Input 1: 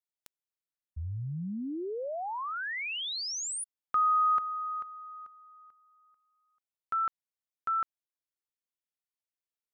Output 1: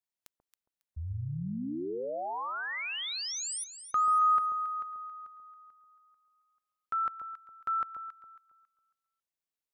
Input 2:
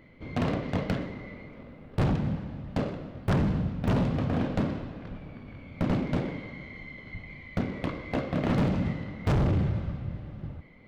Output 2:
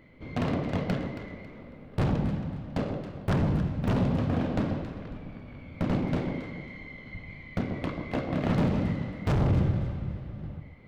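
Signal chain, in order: echo whose repeats swap between lows and highs 137 ms, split 1 kHz, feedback 51%, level -5.5 dB; trim -1 dB

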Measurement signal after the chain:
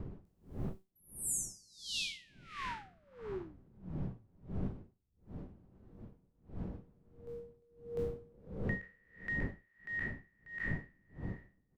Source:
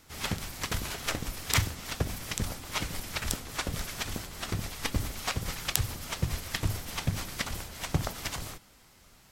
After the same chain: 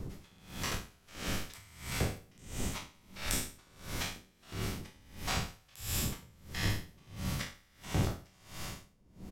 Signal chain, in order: spectral sustain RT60 2.06 s; wind noise 190 Hz -33 dBFS; in parallel at -2 dB: compression, threshold -36 dBFS; on the sum: feedback comb 190 Hz, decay 0.47 s, harmonics all, mix 60%; on a send: delay 87 ms -23.5 dB; on the sum: logarithmic tremolo 1.5 Hz, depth 30 dB; trim -1 dB

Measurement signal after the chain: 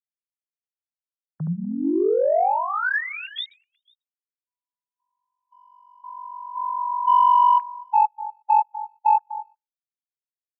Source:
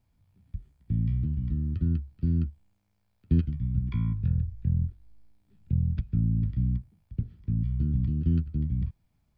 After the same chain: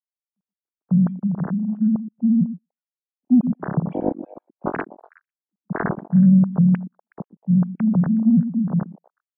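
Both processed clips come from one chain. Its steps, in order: formants replaced by sine waves; dynamic bell 1.6 kHz, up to +6 dB, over -42 dBFS, Q 3.4; repeats whose band climbs or falls 123 ms, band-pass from 260 Hz, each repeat 1.4 oct, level -8 dB; waveshaping leveller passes 1; spectral contrast expander 1.5:1; trim +5 dB

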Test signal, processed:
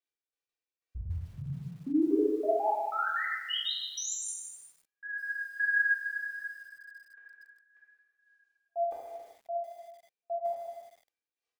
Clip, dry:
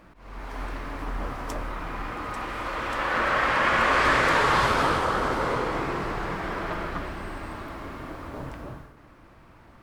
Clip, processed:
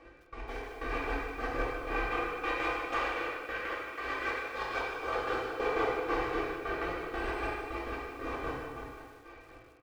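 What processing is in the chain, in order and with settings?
bass shelf 250 Hz -10 dB; comb 2.6 ms, depth 95%; compressor with a negative ratio -27 dBFS, ratio -1; peak limiter -21 dBFS; rotary cabinet horn 6 Hz; small resonant body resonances 520/2400 Hz, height 10 dB, ringing for 30 ms; trance gate "x...x.x...xx." 185 bpm -60 dB; distance through air 78 m; gated-style reverb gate 450 ms falling, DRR -6 dB; bit-crushed delay 152 ms, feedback 35%, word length 8-bit, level -11 dB; trim -5 dB

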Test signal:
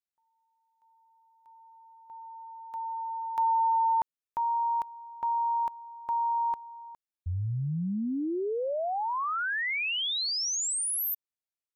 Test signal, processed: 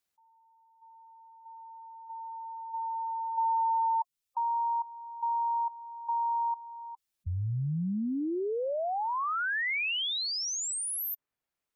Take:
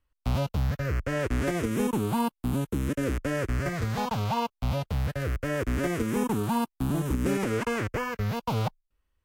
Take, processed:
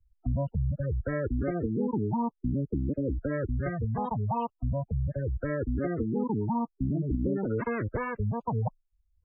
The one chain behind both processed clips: spectral gate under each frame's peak -15 dB strong; three bands compressed up and down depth 40%; trim -1.5 dB

